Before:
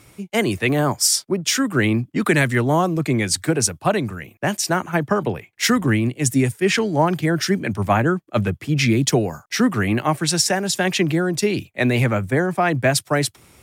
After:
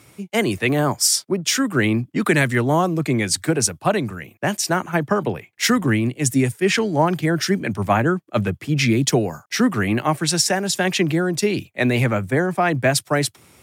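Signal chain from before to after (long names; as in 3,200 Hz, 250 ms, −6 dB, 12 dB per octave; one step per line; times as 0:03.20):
high-pass filter 87 Hz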